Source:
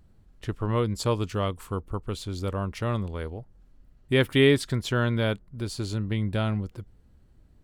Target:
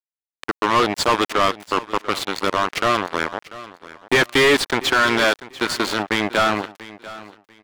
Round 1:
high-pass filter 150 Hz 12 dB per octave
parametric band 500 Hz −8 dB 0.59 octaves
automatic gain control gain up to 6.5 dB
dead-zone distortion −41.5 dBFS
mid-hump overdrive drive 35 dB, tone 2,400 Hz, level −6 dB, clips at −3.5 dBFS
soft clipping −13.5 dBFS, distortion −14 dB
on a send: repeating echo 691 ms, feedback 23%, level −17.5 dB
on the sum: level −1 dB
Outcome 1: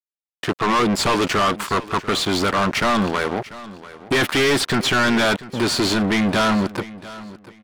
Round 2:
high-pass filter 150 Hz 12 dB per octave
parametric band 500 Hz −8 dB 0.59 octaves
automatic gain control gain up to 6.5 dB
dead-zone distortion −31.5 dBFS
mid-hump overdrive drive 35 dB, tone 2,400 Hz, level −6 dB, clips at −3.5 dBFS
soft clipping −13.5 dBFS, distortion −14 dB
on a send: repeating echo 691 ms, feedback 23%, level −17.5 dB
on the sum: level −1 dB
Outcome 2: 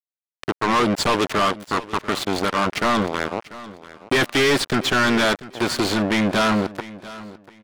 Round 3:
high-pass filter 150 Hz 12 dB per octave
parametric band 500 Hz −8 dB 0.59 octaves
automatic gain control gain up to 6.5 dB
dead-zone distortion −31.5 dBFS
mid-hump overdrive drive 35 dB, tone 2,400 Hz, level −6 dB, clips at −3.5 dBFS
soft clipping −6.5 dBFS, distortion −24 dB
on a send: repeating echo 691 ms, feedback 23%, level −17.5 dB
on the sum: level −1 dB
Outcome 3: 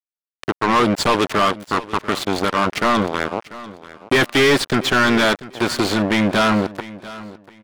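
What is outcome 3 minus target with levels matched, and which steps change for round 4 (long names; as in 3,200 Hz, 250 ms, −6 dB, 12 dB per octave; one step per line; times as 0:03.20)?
125 Hz band +5.5 dB
change: high-pass filter 310 Hz 12 dB per octave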